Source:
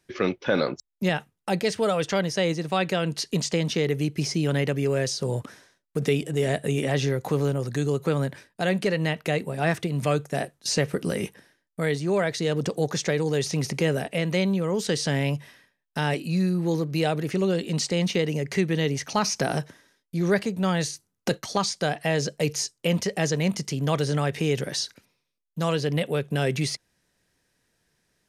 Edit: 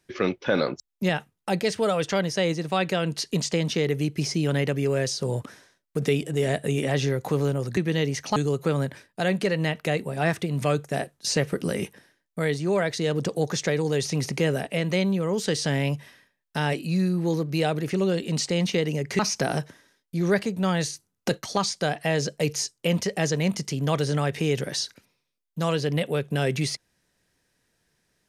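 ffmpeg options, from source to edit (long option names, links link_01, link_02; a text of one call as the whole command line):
ffmpeg -i in.wav -filter_complex "[0:a]asplit=4[link_01][link_02][link_03][link_04];[link_01]atrim=end=7.772[link_05];[link_02]atrim=start=18.598:end=19.192[link_06];[link_03]atrim=start=7.768:end=18.602[link_07];[link_04]atrim=start=19.188[link_08];[link_05][link_06]acrossfade=duration=0.004:curve1=hsin:curve2=hsin[link_09];[link_09][link_07]acrossfade=duration=0.004:curve1=hsin:curve2=hsin[link_10];[link_10][link_08]acrossfade=duration=0.004:curve1=hsin:curve2=hsin" out.wav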